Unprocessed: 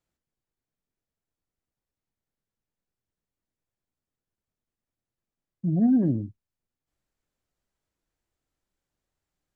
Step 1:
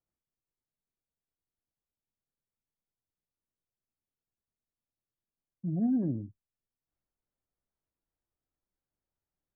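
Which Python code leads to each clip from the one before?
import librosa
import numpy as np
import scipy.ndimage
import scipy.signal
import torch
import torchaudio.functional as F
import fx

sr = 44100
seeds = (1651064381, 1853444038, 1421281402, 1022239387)

y = scipy.signal.sosfilt(scipy.signal.butter(2, 1500.0, 'lowpass', fs=sr, output='sos'), x)
y = y * librosa.db_to_amplitude(-7.5)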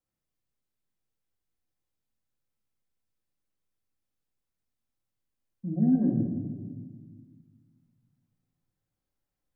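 y = fx.room_shoebox(x, sr, seeds[0], volume_m3=1500.0, walls='mixed', distance_m=2.1)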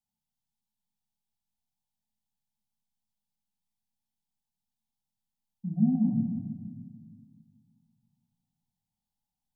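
y = fx.curve_eq(x, sr, hz=(120.0, 220.0, 420.0, 870.0, 1300.0, 3200.0), db=(0, 9, -28, 12, -23, 4))
y = y * librosa.db_to_amplitude(-5.5)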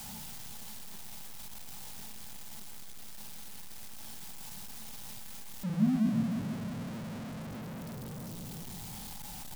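y = x + 0.5 * 10.0 ** (-31.5 / 20.0) * np.sign(x)
y = y * librosa.db_to_amplitude(-4.0)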